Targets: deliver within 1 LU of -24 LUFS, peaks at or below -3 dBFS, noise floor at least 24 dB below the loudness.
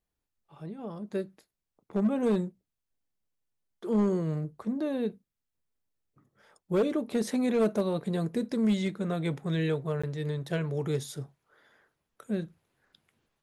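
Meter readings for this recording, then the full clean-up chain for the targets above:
clipped 0.7%; flat tops at -20.0 dBFS; dropouts 1; longest dropout 15 ms; loudness -30.5 LUFS; peak -20.0 dBFS; loudness target -24.0 LUFS
-> clip repair -20 dBFS; interpolate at 10.02, 15 ms; gain +6.5 dB

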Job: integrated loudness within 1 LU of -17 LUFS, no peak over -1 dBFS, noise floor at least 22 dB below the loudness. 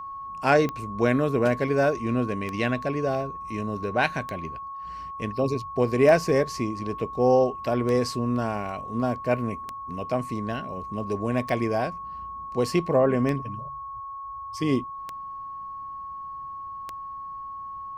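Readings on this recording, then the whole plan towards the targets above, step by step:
clicks 10; steady tone 1100 Hz; tone level -34 dBFS; loudness -26.0 LUFS; peak -5.0 dBFS; loudness target -17.0 LUFS
-> de-click; notch 1100 Hz, Q 30; gain +9 dB; limiter -1 dBFS

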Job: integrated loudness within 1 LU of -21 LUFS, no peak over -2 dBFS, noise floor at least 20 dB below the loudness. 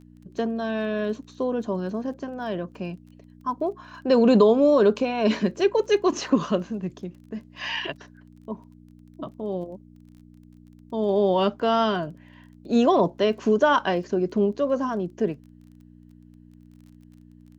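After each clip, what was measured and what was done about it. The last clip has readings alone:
ticks 23/s; hum 60 Hz; harmonics up to 300 Hz; hum level -49 dBFS; loudness -23.5 LUFS; peak -6.0 dBFS; loudness target -21.0 LUFS
-> de-click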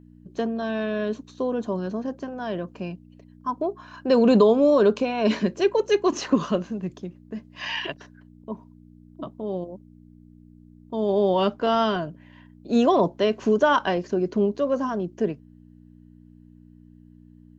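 ticks 0.057/s; hum 60 Hz; harmonics up to 300 Hz; hum level -49 dBFS
-> de-hum 60 Hz, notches 5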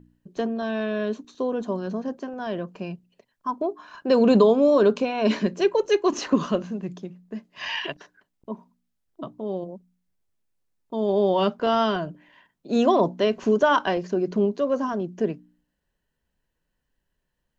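hum none; loudness -24.0 LUFS; peak -6.0 dBFS; loudness target -21.0 LUFS
-> gain +3 dB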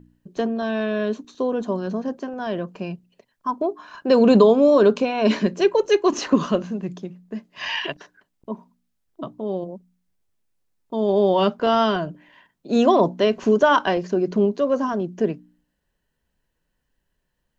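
loudness -21.0 LUFS; peak -3.0 dBFS; noise floor -75 dBFS

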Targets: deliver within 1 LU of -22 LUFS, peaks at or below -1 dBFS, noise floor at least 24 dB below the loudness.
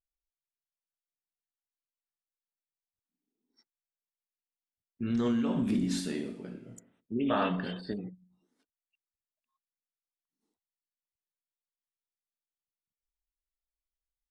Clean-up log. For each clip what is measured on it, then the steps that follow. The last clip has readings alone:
loudness -32.0 LUFS; peak -17.0 dBFS; loudness target -22.0 LUFS
-> gain +10 dB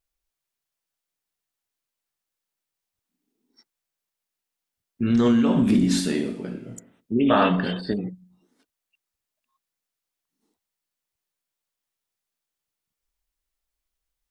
loudness -22.0 LUFS; peak -7.0 dBFS; noise floor -86 dBFS

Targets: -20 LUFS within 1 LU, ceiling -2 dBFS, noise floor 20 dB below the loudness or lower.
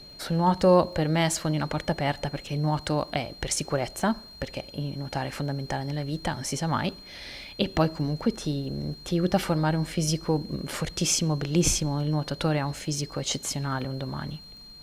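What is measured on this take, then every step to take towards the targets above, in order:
ticks 34/s; steady tone 4200 Hz; tone level -45 dBFS; loudness -27.5 LUFS; peak -8.0 dBFS; loudness target -20.0 LUFS
-> de-click; notch 4200 Hz, Q 30; gain +7.5 dB; limiter -2 dBFS

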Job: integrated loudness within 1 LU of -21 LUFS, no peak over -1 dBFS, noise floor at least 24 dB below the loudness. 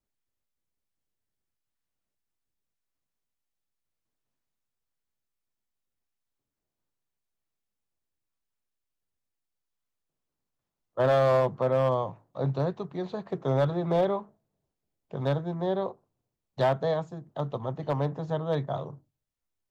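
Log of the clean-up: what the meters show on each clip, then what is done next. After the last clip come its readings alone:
clipped 0.4%; flat tops at -17.5 dBFS; loudness -28.5 LUFS; peak -17.5 dBFS; loudness target -21.0 LUFS
-> clip repair -17.5 dBFS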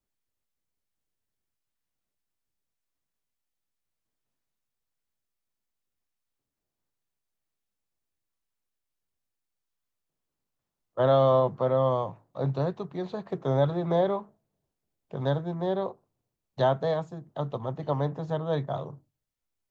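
clipped 0.0%; loudness -28.0 LUFS; peak -11.5 dBFS; loudness target -21.0 LUFS
-> gain +7 dB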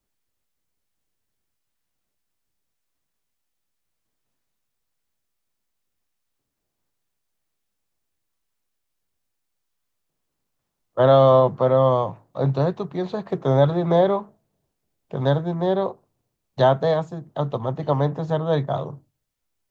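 loudness -21.0 LUFS; peak -4.5 dBFS; noise floor -79 dBFS

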